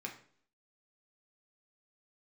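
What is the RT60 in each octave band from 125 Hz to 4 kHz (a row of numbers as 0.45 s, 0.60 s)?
0.55 s, 0.65 s, 0.60 s, 0.50 s, 0.50 s, 0.50 s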